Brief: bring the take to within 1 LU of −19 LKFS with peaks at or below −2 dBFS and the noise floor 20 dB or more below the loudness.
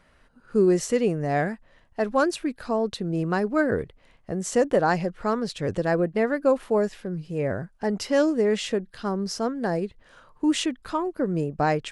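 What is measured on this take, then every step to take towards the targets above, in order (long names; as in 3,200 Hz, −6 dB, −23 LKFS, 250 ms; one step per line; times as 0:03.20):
integrated loudness −25.5 LKFS; sample peak −9.0 dBFS; target loudness −19.0 LKFS
→ level +6.5 dB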